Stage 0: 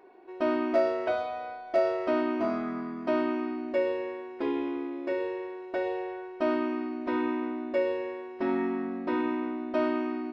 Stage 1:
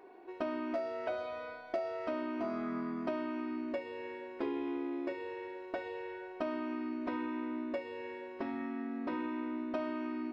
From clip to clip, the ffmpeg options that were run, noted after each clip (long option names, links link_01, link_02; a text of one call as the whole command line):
ffmpeg -i in.wav -af "acompressor=threshold=-33dB:ratio=6,bandreject=frequency=184.9:width_type=h:width=4,bandreject=frequency=369.8:width_type=h:width=4,bandreject=frequency=554.7:width_type=h:width=4,bandreject=frequency=739.6:width_type=h:width=4,bandreject=frequency=924.5:width_type=h:width=4,bandreject=frequency=1109.4:width_type=h:width=4,bandreject=frequency=1294.3:width_type=h:width=4,bandreject=frequency=1479.2:width_type=h:width=4,bandreject=frequency=1664.1:width_type=h:width=4,bandreject=frequency=1849:width_type=h:width=4,bandreject=frequency=2033.9:width_type=h:width=4,bandreject=frequency=2218.8:width_type=h:width=4,bandreject=frequency=2403.7:width_type=h:width=4,bandreject=frequency=2588.6:width_type=h:width=4,bandreject=frequency=2773.5:width_type=h:width=4,bandreject=frequency=2958.4:width_type=h:width=4,bandreject=frequency=3143.3:width_type=h:width=4,bandreject=frequency=3328.2:width_type=h:width=4,bandreject=frequency=3513.1:width_type=h:width=4,bandreject=frequency=3698:width_type=h:width=4,bandreject=frequency=3882.9:width_type=h:width=4,bandreject=frequency=4067.8:width_type=h:width=4,bandreject=frequency=4252.7:width_type=h:width=4,bandreject=frequency=4437.6:width_type=h:width=4,bandreject=frequency=4622.5:width_type=h:width=4,bandreject=frequency=4807.4:width_type=h:width=4,bandreject=frequency=4992.3:width_type=h:width=4,bandreject=frequency=5177.2:width_type=h:width=4,bandreject=frequency=5362.1:width_type=h:width=4,bandreject=frequency=5547:width_type=h:width=4,bandreject=frequency=5731.9:width_type=h:width=4,bandreject=frequency=5916.8:width_type=h:width=4" out.wav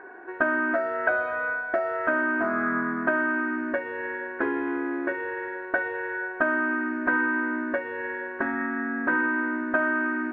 ffmpeg -i in.wav -af "lowpass=frequency=1600:width_type=q:width=14,volume=7.5dB" out.wav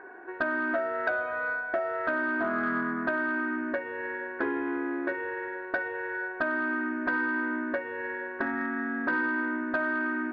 ffmpeg -i in.wav -filter_complex "[0:a]asplit=2[link_01][link_02];[link_02]alimiter=limit=-15dB:level=0:latency=1:release=431,volume=-0.5dB[link_03];[link_01][link_03]amix=inputs=2:normalize=0,asoftclip=type=tanh:threshold=-7.5dB,volume=-8dB" out.wav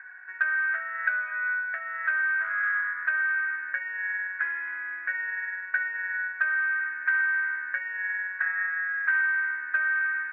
ffmpeg -i in.wav -af "asuperpass=centerf=1900:order=4:qfactor=2.3,volume=8dB" out.wav